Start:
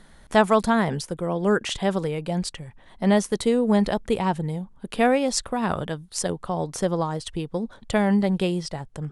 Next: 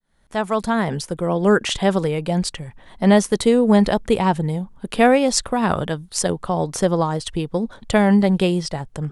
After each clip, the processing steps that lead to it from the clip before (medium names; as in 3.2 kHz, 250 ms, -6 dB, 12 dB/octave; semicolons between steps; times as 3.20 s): fade-in on the opening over 1.32 s; trim +5.5 dB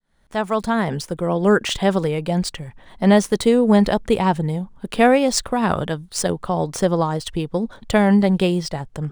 median filter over 3 samples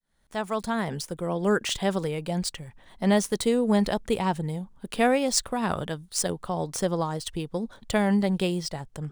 treble shelf 4.3 kHz +7.5 dB; trim -8 dB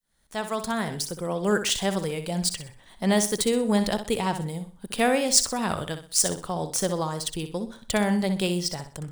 treble shelf 3.5 kHz +8.5 dB; flutter echo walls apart 10.7 m, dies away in 0.38 s; trim -1 dB